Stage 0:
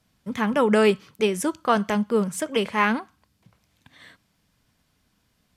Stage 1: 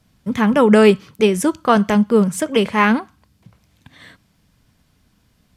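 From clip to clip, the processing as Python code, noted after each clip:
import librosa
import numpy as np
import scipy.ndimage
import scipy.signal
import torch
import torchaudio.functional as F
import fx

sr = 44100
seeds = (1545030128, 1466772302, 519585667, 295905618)

y = fx.low_shelf(x, sr, hz=290.0, db=6.5)
y = F.gain(torch.from_numpy(y), 5.0).numpy()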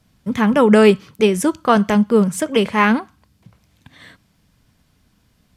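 y = x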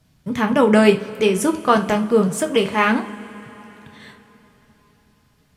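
y = fx.rev_double_slope(x, sr, seeds[0], early_s=0.27, late_s=4.1, knee_db=-22, drr_db=4.5)
y = F.gain(torch.from_numpy(y), -2.0).numpy()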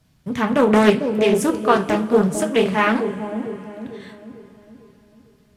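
y = fx.echo_bbd(x, sr, ms=449, stages=2048, feedback_pct=47, wet_db=-6.0)
y = fx.doppler_dist(y, sr, depth_ms=0.32)
y = F.gain(torch.from_numpy(y), -1.0).numpy()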